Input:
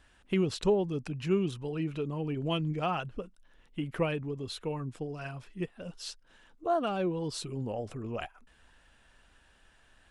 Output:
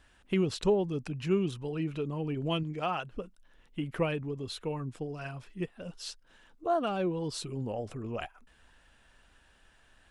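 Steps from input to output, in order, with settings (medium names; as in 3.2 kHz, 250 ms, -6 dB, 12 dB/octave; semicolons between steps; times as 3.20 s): 2.63–3.12 s: bass shelf 200 Hz -9 dB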